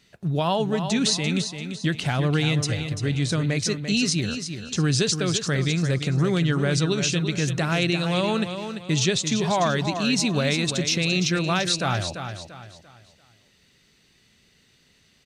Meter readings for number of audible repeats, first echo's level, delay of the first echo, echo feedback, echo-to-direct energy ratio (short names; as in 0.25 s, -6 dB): 3, -8.5 dB, 0.342 s, 35%, -8.0 dB